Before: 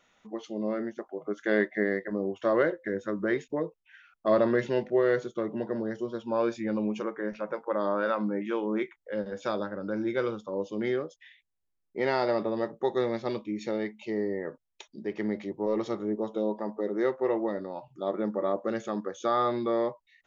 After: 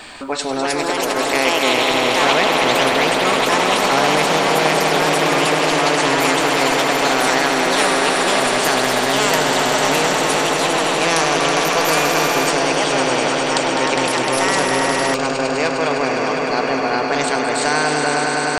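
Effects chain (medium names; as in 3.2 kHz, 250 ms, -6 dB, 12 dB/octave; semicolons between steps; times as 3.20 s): fade out at the end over 0.74 s; in parallel at +2.5 dB: compression 12:1, threshold -34 dBFS, peak gain reduction 15.5 dB; on the sum: pitch shift +2.5 st; on a send: echo with a slow build-up 111 ms, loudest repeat 5, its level -10 dB; on the sum: tape speed +9%; ever faster or slower copies 395 ms, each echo +4 st, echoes 2; spectrum-flattening compressor 2:1; trim +4.5 dB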